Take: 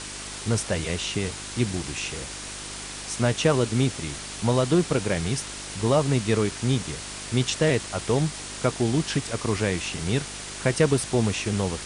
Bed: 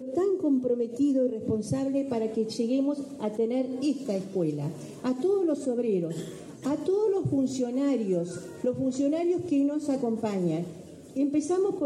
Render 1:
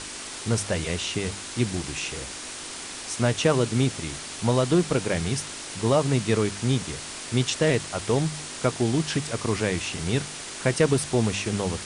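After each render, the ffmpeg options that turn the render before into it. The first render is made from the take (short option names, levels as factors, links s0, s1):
-af "bandreject=f=50:t=h:w=4,bandreject=f=100:t=h:w=4,bandreject=f=150:t=h:w=4,bandreject=f=200:t=h:w=4"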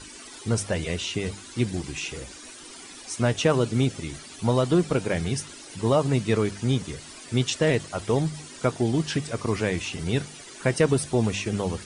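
-af "afftdn=nr=13:nf=-37"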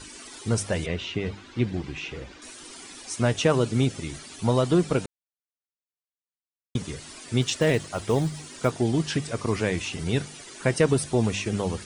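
-filter_complex "[0:a]asettb=1/sr,asplit=3[s0][s1][s2];[s0]atrim=end=0.864[s3];[s1]atrim=start=0.86:end=2.42,asetpts=PTS-STARTPTS,afade=t=in:d=0.004:c=qsin,afade=t=out:st=1.556:d=0.004:c=qsin,lowpass=3200[s4];[s2]atrim=start=2.416[s5];[s3][s4]acrossfade=d=0.004:c1=hsin:c2=qsin[s6];[s6][s5]acrossfade=d=0.004:c1=qsin:c2=hsin,asettb=1/sr,asplit=3[s7][s8][s9];[s7]atrim=end=7.424[s10];[s8]atrim=start=7.42:end=8.7,asetpts=PTS-STARTPTS,afade=t=in:d=0.004:c=qsin,afade=t=out:st=1.276:d=0.004:c=qsin,acrusher=bits=8:mode=log:mix=0:aa=0.000001[s11];[s9]atrim=start=8.696[s12];[s10][s11]acrossfade=d=0.004:c1=hsin:c2=qsin[s13];[s13][s12]acrossfade=d=0.004:c1=qsin:c2=hsin,asplit=3[s14][s15][s16];[s14]atrim=end=5.06,asetpts=PTS-STARTPTS,afade=t=out:st=5.056:d=0.004:c=hsin[s17];[s15]atrim=start=5.06:end=6.75,asetpts=PTS-STARTPTS,volume=0[s18];[s16]atrim=start=6.75,asetpts=PTS-STARTPTS,afade=t=in:d=0.004:c=hsin[s19];[s17][s18][s19]concat=n=3:v=0:a=1"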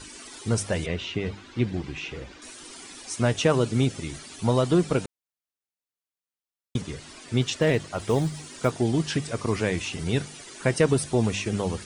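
-filter_complex "[0:a]asettb=1/sr,asplit=3[s0][s1][s2];[s0]atrim=end=6.814[s3];[s1]atrim=start=6.81:end=8,asetpts=PTS-STARTPTS,afade=t=in:d=0.004:c=qsin,afade=t=out:st=1.186:d=0.004:c=qsin,highshelf=f=7700:g=-9[s4];[s2]atrim=start=7.996[s5];[s3][s4]acrossfade=d=0.004:c1=hsin:c2=qsin[s6];[s6][s5]acrossfade=d=0.004:c1=qsin:c2=hsin"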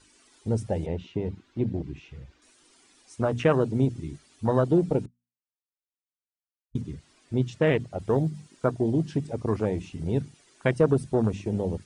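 -af "bandreject=f=60:t=h:w=6,bandreject=f=120:t=h:w=6,bandreject=f=180:t=h:w=6,bandreject=f=240:t=h:w=6,afwtdn=0.0398"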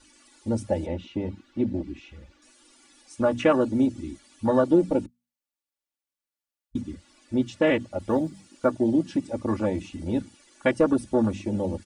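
-af "equalizer=f=65:w=2.3:g=-6,aecho=1:1:3.5:0.91"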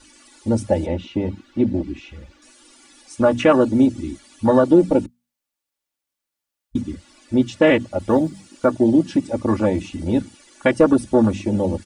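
-af "volume=2.24,alimiter=limit=0.708:level=0:latency=1"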